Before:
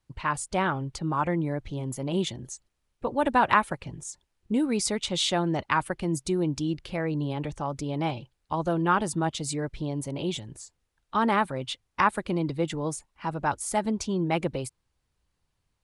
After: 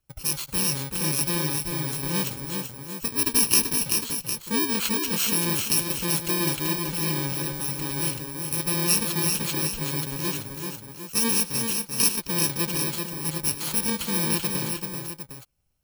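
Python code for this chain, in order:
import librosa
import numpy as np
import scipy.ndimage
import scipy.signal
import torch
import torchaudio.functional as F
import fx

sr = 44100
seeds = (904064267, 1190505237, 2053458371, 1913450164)

y = fx.bit_reversed(x, sr, seeds[0], block=64)
y = fx.echo_multitap(y, sr, ms=(100, 385, 417, 756), db=(-18.5, -5.0, -17.0, -9.5))
y = fx.dynamic_eq(y, sr, hz=3400.0, q=1.0, threshold_db=-43.0, ratio=4.0, max_db=6)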